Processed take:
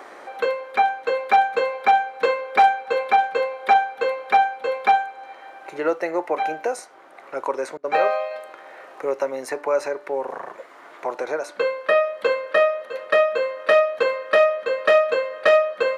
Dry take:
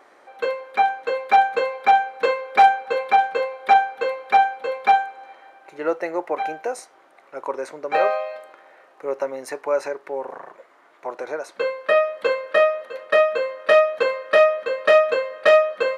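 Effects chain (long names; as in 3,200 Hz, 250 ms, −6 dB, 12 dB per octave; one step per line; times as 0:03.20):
hum removal 293.2 Hz, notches 15
0:07.77–0:08.31: downward expander −27 dBFS
multiband upward and downward compressor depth 40%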